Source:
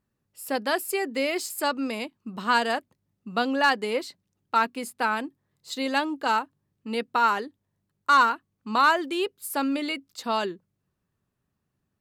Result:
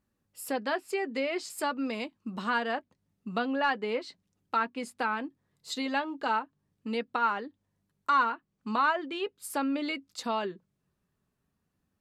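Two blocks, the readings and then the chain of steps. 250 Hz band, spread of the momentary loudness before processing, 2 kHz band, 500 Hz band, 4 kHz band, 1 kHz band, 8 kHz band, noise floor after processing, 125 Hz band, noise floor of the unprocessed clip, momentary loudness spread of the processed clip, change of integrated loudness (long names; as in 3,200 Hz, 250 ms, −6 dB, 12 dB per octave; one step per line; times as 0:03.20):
−3.5 dB, 13 LU, −6.0 dB, −4.5 dB, −7.5 dB, −5.5 dB, −7.0 dB, −80 dBFS, can't be measured, −79 dBFS, 11 LU, −5.5 dB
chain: treble cut that deepens with the level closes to 3,000 Hz, closed at −22 dBFS
in parallel at +3 dB: downward compressor, threshold −34 dBFS, peak gain reduction 18 dB
on the sum: flanger 0.41 Hz, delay 3.5 ms, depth 1.5 ms, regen −60%
level −3.5 dB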